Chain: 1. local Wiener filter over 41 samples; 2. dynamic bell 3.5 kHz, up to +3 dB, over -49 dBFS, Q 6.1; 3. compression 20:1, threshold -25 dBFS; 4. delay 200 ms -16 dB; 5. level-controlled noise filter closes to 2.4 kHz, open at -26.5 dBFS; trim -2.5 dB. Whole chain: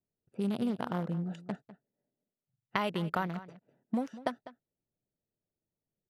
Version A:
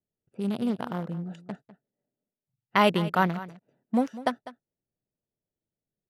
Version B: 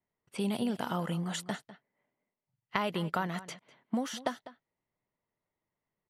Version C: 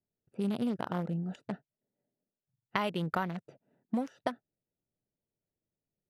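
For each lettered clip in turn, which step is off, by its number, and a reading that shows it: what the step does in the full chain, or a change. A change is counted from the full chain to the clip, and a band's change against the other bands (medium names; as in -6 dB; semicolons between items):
3, mean gain reduction 4.5 dB; 1, 8 kHz band +14.5 dB; 4, momentary loudness spread change -2 LU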